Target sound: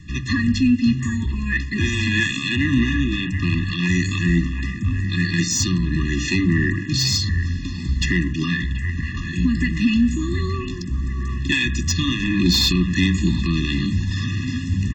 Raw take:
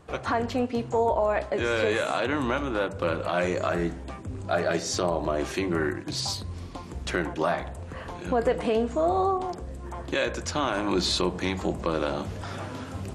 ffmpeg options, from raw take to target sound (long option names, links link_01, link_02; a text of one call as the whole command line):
ffmpeg -i in.wav -filter_complex "[0:a]asuperstop=centerf=660:order=8:qfactor=0.5,bandreject=frequency=298.5:width_type=h:width=4,bandreject=frequency=597:width_type=h:width=4,bandreject=frequency=895.5:width_type=h:width=4,bandreject=frequency=1194:width_type=h:width=4,bandreject=frequency=1492.5:width_type=h:width=4,aresample=16000,aeval=exprs='0.178*sin(PI/2*1.58*val(0)/0.178)':channel_layout=same,aresample=44100,atempo=0.88,acrossover=split=520|3300[link_01][link_02][link_03];[link_02]asplit=2[link_04][link_05];[link_05]adelay=731,lowpass=frequency=2100:poles=1,volume=-5dB,asplit=2[link_06][link_07];[link_07]adelay=731,lowpass=frequency=2100:poles=1,volume=0.48,asplit=2[link_08][link_09];[link_09]adelay=731,lowpass=frequency=2100:poles=1,volume=0.48,asplit=2[link_10][link_11];[link_11]adelay=731,lowpass=frequency=2100:poles=1,volume=0.48,asplit=2[link_12][link_13];[link_13]adelay=731,lowpass=frequency=2100:poles=1,volume=0.48,asplit=2[link_14][link_15];[link_15]adelay=731,lowpass=frequency=2100:poles=1,volume=0.48[link_16];[link_04][link_06][link_08][link_10][link_12][link_14][link_16]amix=inputs=7:normalize=0[link_17];[link_03]volume=21.5dB,asoftclip=hard,volume=-21.5dB[link_18];[link_01][link_17][link_18]amix=inputs=3:normalize=0,afftfilt=real='re*eq(mod(floor(b*sr/1024/410),2),0)':imag='im*eq(mod(floor(b*sr/1024/410),2),0)':win_size=1024:overlap=0.75,volume=7dB" out.wav